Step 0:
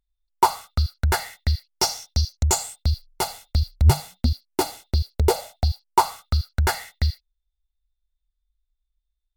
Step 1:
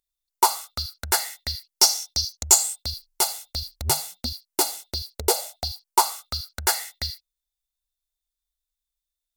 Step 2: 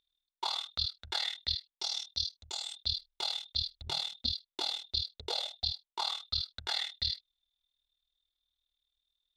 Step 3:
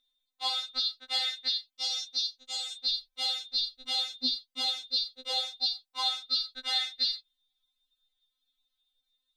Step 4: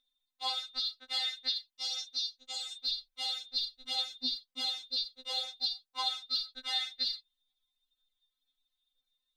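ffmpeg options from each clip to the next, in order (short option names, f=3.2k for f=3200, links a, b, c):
-af "bass=f=250:g=-14,treble=f=4k:g=11,volume=-2dB"
-af "areverse,acompressor=threshold=-30dB:ratio=10,areverse,lowpass=f=3.6k:t=q:w=8.9,tremolo=f=39:d=0.824,volume=-1dB"
-af "afftfilt=real='re*3.46*eq(mod(b,12),0)':imag='im*3.46*eq(mod(b,12),0)':win_size=2048:overlap=0.75,volume=6dB"
-af "aphaser=in_gain=1:out_gain=1:delay=1.1:decay=0.33:speed=2:type=sinusoidal,volume=-4.5dB"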